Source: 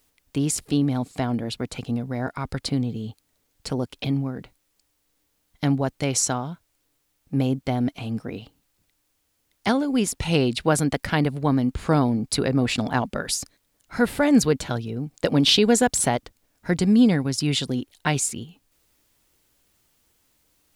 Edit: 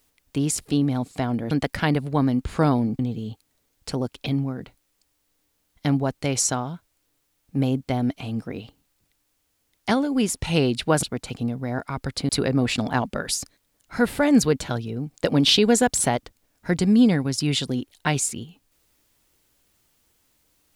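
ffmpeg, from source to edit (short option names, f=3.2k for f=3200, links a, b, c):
-filter_complex "[0:a]asplit=5[a][b][c][d][e];[a]atrim=end=1.512[f];[b]atrim=start=10.808:end=12.292[g];[c]atrim=start=2.768:end=10.812[h];[d]atrim=start=1.508:end=2.772[i];[e]atrim=start=12.288[j];[f][g]acrossfade=d=0.004:c1=hsin:c2=hsin[k];[k][h]acrossfade=d=0.004:c1=hsin:c2=hsin[l];[l][i]acrossfade=d=0.004:c1=hsin:c2=hsin[m];[m][j]acrossfade=d=0.004:c1=hsin:c2=hsin"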